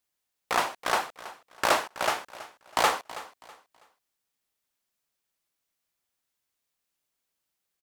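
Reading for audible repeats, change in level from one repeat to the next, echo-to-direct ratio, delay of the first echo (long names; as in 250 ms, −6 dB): 2, −11.0 dB, −16.0 dB, 325 ms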